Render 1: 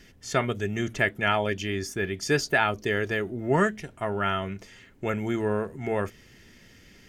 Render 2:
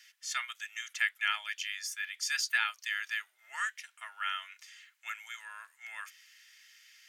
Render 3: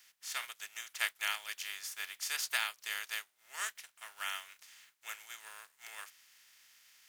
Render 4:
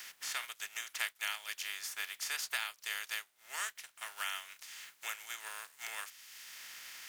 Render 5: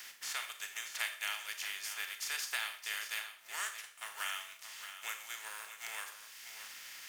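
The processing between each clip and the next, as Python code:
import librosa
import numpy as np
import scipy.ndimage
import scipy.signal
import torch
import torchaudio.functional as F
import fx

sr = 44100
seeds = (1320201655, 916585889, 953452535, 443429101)

y1 = scipy.signal.sosfilt(scipy.signal.bessel(6, 2100.0, 'highpass', norm='mag', fs=sr, output='sos'), x)
y2 = fx.spec_flatten(y1, sr, power=0.44)
y2 = y2 * 10.0 ** (-4.0 / 20.0)
y3 = fx.band_squash(y2, sr, depth_pct=70)
y4 = y3 + 10.0 ** (-10.5 / 20.0) * np.pad(y3, (int(625 * sr / 1000.0), 0))[:len(y3)]
y4 = fx.rev_schroeder(y4, sr, rt60_s=0.51, comb_ms=28, drr_db=7.0)
y4 = y4 * 10.0 ** (-1.0 / 20.0)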